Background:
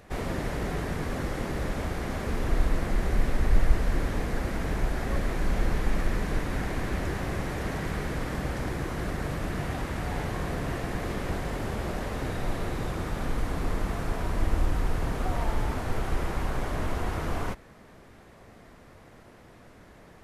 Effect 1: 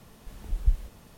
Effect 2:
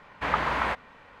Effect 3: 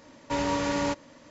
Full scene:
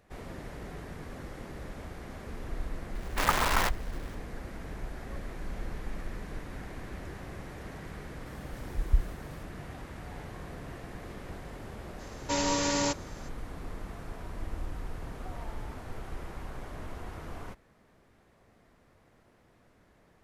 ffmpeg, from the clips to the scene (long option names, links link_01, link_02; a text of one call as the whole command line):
ffmpeg -i bed.wav -i cue0.wav -i cue1.wav -i cue2.wav -filter_complex "[0:a]volume=-11.5dB[link_01];[2:a]acrusher=bits=5:dc=4:mix=0:aa=0.000001[link_02];[3:a]bass=frequency=250:gain=-1,treble=frequency=4000:gain=12[link_03];[link_02]atrim=end=1.2,asetpts=PTS-STARTPTS,volume=-1dB,afade=type=in:duration=0.004:curve=hsin,afade=type=out:start_time=1.196:duration=0.004:curve=hsin,adelay=2950[link_04];[1:a]atrim=end=1.17,asetpts=PTS-STARTPTS,volume=-1.5dB,afade=type=in:duration=0.004:curve=hsin,afade=type=out:start_time=1.166:duration=0.004:curve=hsin,adelay=364266S[link_05];[link_03]atrim=end=1.3,asetpts=PTS-STARTPTS,volume=-2dB,afade=type=in:duration=0.004:curve=hsin,afade=type=out:start_time=1.296:duration=0.004:curve=hsin,adelay=11990[link_06];[link_01][link_04][link_05][link_06]amix=inputs=4:normalize=0" out.wav